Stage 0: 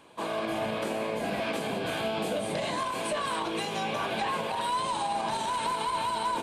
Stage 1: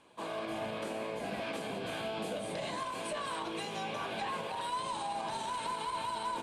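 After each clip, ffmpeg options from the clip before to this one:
-af "lowpass=f=12k:w=0.5412,lowpass=f=12k:w=1.3066,bandreject=f=74.53:t=h:w=4,bandreject=f=149.06:t=h:w=4,bandreject=f=223.59:t=h:w=4,bandreject=f=298.12:t=h:w=4,bandreject=f=372.65:t=h:w=4,bandreject=f=447.18:t=h:w=4,bandreject=f=521.71:t=h:w=4,bandreject=f=596.24:t=h:w=4,bandreject=f=670.77:t=h:w=4,bandreject=f=745.3:t=h:w=4,bandreject=f=819.83:t=h:w=4,bandreject=f=894.36:t=h:w=4,bandreject=f=968.89:t=h:w=4,bandreject=f=1.04342k:t=h:w=4,bandreject=f=1.11795k:t=h:w=4,bandreject=f=1.19248k:t=h:w=4,bandreject=f=1.26701k:t=h:w=4,bandreject=f=1.34154k:t=h:w=4,bandreject=f=1.41607k:t=h:w=4,bandreject=f=1.4906k:t=h:w=4,bandreject=f=1.56513k:t=h:w=4,bandreject=f=1.63966k:t=h:w=4,bandreject=f=1.71419k:t=h:w=4,bandreject=f=1.78872k:t=h:w=4,bandreject=f=1.86325k:t=h:w=4,bandreject=f=1.93778k:t=h:w=4,bandreject=f=2.01231k:t=h:w=4,bandreject=f=2.08684k:t=h:w=4,bandreject=f=2.16137k:t=h:w=4,bandreject=f=2.2359k:t=h:w=4,bandreject=f=2.31043k:t=h:w=4,bandreject=f=2.38496k:t=h:w=4,volume=-6.5dB"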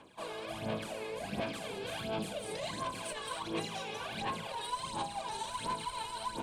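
-filter_complex "[0:a]acrossover=split=180|3000[a][b][c];[b]acompressor=threshold=-42dB:ratio=3[d];[a][d][c]amix=inputs=3:normalize=0,aphaser=in_gain=1:out_gain=1:delay=2.4:decay=0.64:speed=1.4:type=sinusoidal"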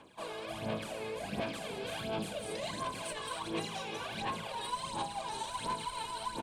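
-af "aecho=1:1:378:0.211"

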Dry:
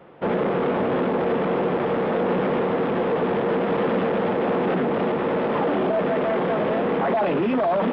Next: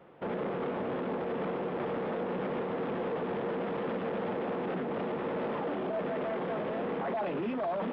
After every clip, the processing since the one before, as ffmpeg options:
-af "alimiter=limit=-18dB:level=0:latency=1:release=116,volume=-8dB"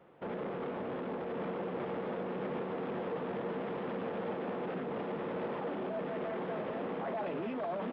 -af "aecho=1:1:1144:0.422,volume=-4.5dB"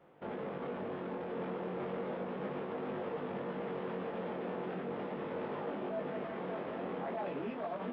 -af "flanger=delay=19.5:depth=2.8:speed=0.35,volume=1dB"

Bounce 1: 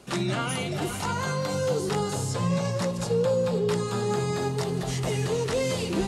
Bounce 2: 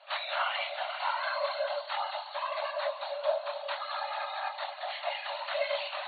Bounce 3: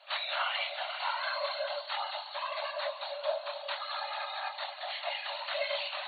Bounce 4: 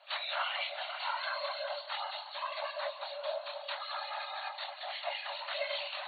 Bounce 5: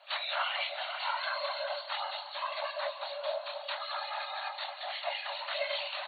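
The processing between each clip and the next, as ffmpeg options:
-af "flanger=delay=19:depth=7.5:speed=0.46,afftfilt=real='hypot(re,im)*cos(2*PI*random(0))':imag='hypot(re,im)*sin(2*PI*random(1))':win_size=512:overlap=0.75,afftfilt=real='re*between(b*sr/4096,550,4500)':imag='im*between(b*sr/4096,550,4500)':win_size=4096:overlap=0.75,volume=9dB"
-af "highshelf=f=2.4k:g=9,volume=-4dB"
-filter_complex "[0:a]acrossover=split=2000[a][b];[a]aeval=exprs='val(0)*(1-0.5/2+0.5/2*cos(2*PI*5.3*n/s))':c=same[c];[b]aeval=exprs='val(0)*(1-0.5/2-0.5/2*cos(2*PI*5.3*n/s))':c=same[d];[c][d]amix=inputs=2:normalize=0"
-af "aecho=1:1:470:0.168,volume=2dB"

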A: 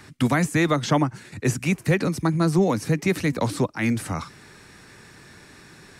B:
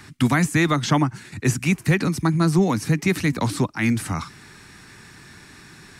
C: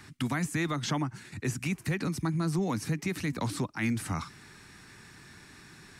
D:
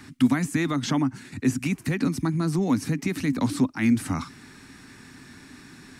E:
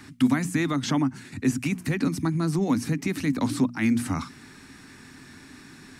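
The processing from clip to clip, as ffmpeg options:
-af "equalizer=f=530:t=o:w=0.77:g=-8.5,volume=3dB"
-af "alimiter=limit=-14.5dB:level=0:latency=1:release=163,volume=-6.5dB"
-af "equalizer=f=260:w=4.3:g=13.5,volume=3dB"
-af "bandreject=f=60:t=h:w=6,bandreject=f=120:t=h:w=6,bandreject=f=180:t=h:w=6,bandreject=f=240:t=h:w=6"

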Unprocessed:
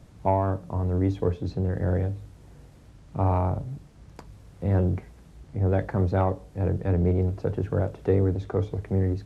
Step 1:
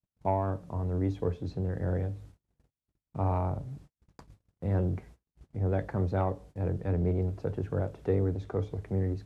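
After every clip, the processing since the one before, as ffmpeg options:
-af "agate=range=-44dB:threshold=-44dB:ratio=16:detection=peak,volume=-5.5dB"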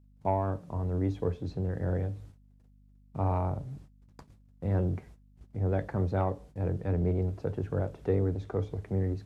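-af "aeval=exprs='val(0)+0.00126*(sin(2*PI*50*n/s)+sin(2*PI*2*50*n/s)/2+sin(2*PI*3*50*n/s)/3+sin(2*PI*4*50*n/s)/4+sin(2*PI*5*50*n/s)/5)':c=same"

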